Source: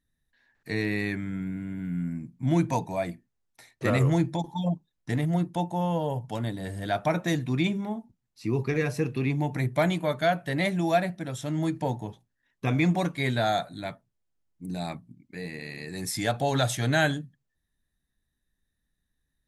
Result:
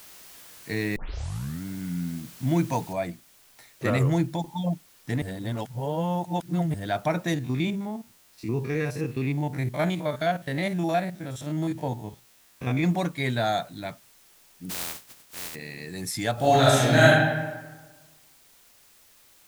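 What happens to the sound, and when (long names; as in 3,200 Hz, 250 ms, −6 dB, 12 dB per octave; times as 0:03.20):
0:00.96: tape start 0.68 s
0:02.93: noise floor change −48 dB −57 dB
0:05.22–0:06.74: reverse
0:07.34–0:12.84: spectrum averaged block by block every 50 ms
0:14.69–0:15.54: compressing power law on the bin magnitudes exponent 0.14
0:16.33–0:17.06: thrown reverb, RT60 1.3 s, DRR −7 dB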